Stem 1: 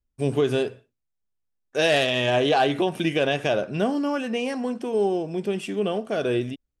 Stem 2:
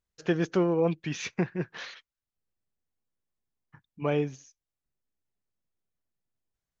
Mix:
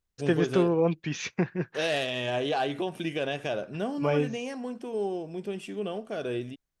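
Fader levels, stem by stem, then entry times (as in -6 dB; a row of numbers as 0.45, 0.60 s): -8.0, +1.0 dB; 0.00, 0.00 s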